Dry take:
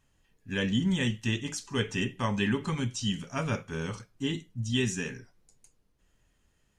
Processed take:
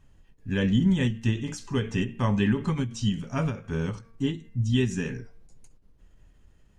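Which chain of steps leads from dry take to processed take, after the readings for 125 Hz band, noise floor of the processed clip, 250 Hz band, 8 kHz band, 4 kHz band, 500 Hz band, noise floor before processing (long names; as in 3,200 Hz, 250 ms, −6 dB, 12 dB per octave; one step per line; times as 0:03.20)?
+6.0 dB, −58 dBFS, +5.0 dB, −4.0 dB, −3.0 dB, +2.5 dB, −71 dBFS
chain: spectral tilt −2 dB per octave
hum removal 228.1 Hz, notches 12
in parallel at −0.5 dB: downward compressor, threshold −39 dBFS, peak gain reduction 19 dB
on the sum: every ending faded ahead of time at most 150 dB per second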